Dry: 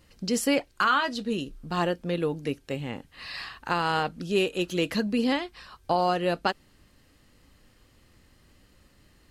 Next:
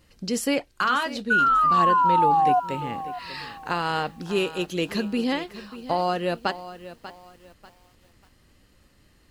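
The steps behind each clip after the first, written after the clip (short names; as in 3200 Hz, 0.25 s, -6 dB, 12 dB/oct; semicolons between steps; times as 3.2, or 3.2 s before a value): painted sound fall, 1.3–2.6, 710–1500 Hz -19 dBFS; lo-fi delay 0.591 s, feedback 35%, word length 8-bit, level -14 dB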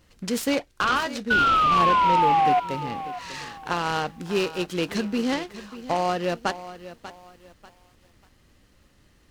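noise-modulated delay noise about 1500 Hz, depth 0.033 ms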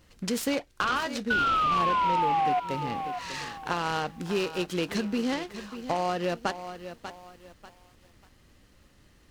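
compressor 2:1, threshold -27 dBFS, peak gain reduction 6.5 dB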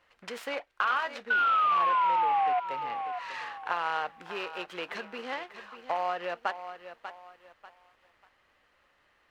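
three-band isolator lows -23 dB, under 560 Hz, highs -18 dB, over 2900 Hz; gain +1 dB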